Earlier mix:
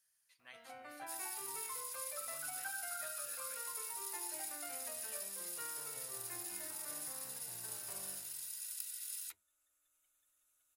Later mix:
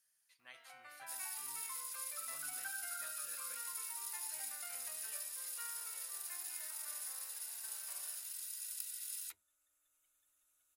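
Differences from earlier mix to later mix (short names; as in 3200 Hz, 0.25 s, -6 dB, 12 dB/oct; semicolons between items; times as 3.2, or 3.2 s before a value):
speech: add low shelf 110 Hz -10 dB; first sound: add HPF 1100 Hz 12 dB/oct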